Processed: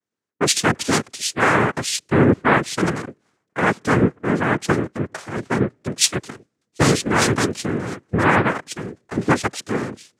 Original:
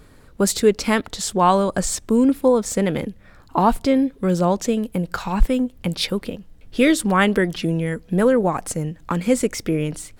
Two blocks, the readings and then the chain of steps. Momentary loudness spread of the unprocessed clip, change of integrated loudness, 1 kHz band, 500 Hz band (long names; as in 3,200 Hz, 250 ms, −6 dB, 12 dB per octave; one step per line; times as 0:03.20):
9 LU, 0.0 dB, +0.5 dB, −2.5 dB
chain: cochlear-implant simulation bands 3
boost into a limiter +6.5 dB
multiband upward and downward expander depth 100%
level −6 dB